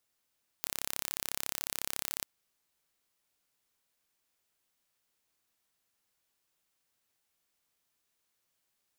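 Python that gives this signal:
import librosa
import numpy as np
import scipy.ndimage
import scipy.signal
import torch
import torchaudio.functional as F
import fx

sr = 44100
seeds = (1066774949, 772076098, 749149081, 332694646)

y = 10.0 ** (-7.0 / 20.0) * (np.mod(np.arange(round(1.6 * sr)), round(sr / 34.0)) == 0)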